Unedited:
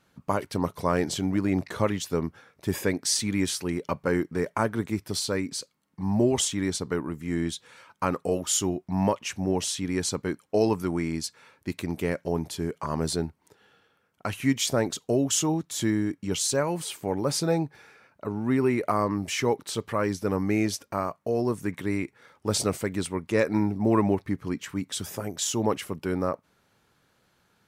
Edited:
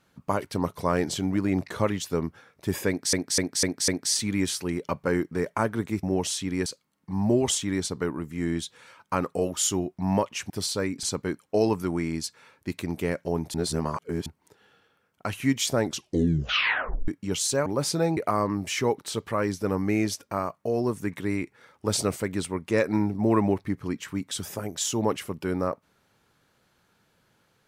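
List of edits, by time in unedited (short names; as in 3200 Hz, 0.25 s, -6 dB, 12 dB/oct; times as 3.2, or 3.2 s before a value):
2.88–3.13 loop, 5 plays
5.03–5.56 swap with 9.4–10.03
12.54–13.26 reverse
14.8 tape stop 1.28 s
16.66–17.14 cut
17.65–18.78 cut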